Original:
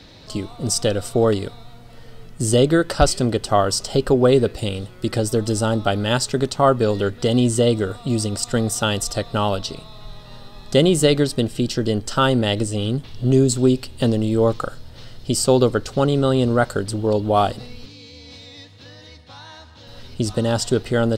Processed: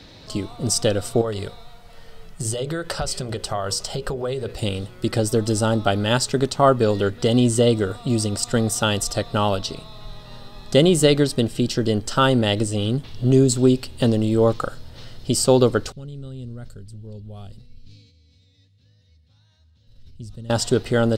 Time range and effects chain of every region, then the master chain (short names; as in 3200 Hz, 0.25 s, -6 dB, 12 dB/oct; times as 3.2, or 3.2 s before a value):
1.21–4.59 compressor 10:1, threshold -19 dBFS + bell 270 Hz -11 dB 0.56 oct + notches 60/120/180/240/300/360/420/480/540 Hz
15.92–20.5 passive tone stack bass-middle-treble 10-0-1 + notch 310 Hz, Q 5.2 + sustainer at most 63 dB/s
whole clip: dry